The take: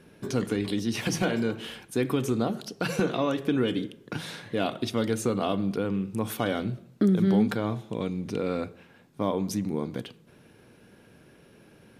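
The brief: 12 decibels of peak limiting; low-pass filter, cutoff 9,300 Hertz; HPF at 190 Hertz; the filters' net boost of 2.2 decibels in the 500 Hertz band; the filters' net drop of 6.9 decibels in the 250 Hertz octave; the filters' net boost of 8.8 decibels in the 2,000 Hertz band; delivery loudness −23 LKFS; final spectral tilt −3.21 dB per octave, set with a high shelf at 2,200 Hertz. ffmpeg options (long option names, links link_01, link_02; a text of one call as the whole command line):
ffmpeg -i in.wav -af "highpass=190,lowpass=9300,equalizer=frequency=250:width_type=o:gain=-8.5,equalizer=frequency=500:width_type=o:gain=4.5,equalizer=frequency=2000:width_type=o:gain=8,highshelf=frequency=2200:gain=7,volume=7dB,alimiter=limit=-10.5dB:level=0:latency=1" out.wav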